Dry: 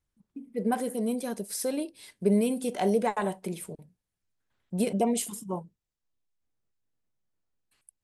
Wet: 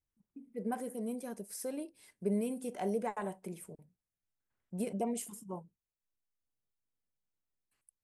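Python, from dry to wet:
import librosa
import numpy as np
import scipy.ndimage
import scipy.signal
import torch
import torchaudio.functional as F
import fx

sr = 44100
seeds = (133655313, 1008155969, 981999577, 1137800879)

y = fx.peak_eq(x, sr, hz=3800.0, db=-8.0, octaves=0.75)
y = y * 10.0 ** (-9.0 / 20.0)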